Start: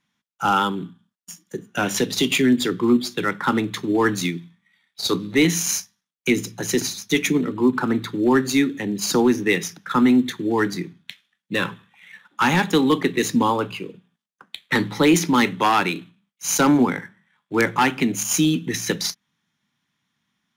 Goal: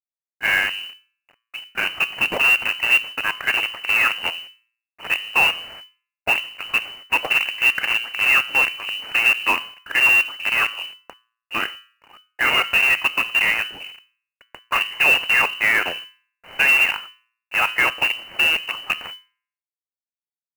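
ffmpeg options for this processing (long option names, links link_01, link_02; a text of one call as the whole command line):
ffmpeg -i in.wav -af "aresample=11025,acrusher=bits=4:dc=4:mix=0:aa=0.000001,aresample=44100,bandreject=frequency=116.3:width_type=h:width=4,bandreject=frequency=232.6:width_type=h:width=4,bandreject=frequency=348.9:width_type=h:width=4,bandreject=frequency=465.2:width_type=h:width=4,bandreject=frequency=581.5:width_type=h:width=4,bandreject=frequency=697.8:width_type=h:width=4,bandreject=frequency=814.1:width_type=h:width=4,bandreject=frequency=930.4:width_type=h:width=4,bandreject=frequency=1046.7:width_type=h:width=4,bandreject=frequency=1163:width_type=h:width=4,bandreject=frequency=1279.3:width_type=h:width=4,bandreject=frequency=1395.6:width_type=h:width=4,bandreject=frequency=1511.9:width_type=h:width=4,bandreject=frequency=1628.2:width_type=h:width=4,bandreject=frequency=1744.5:width_type=h:width=4,bandreject=frequency=1860.8:width_type=h:width=4,bandreject=frequency=1977.1:width_type=h:width=4,lowpass=frequency=2600:width_type=q:width=0.5098,lowpass=frequency=2600:width_type=q:width=0.6013,lowpass=frequency=2600:width_type=q:width=0.9,lowpass=frequency=2600:width_type=q:width=2.563,afreqshift=-3000,acrusher=bits=4:mode=log:mix=0:aa=0.000001" out.wav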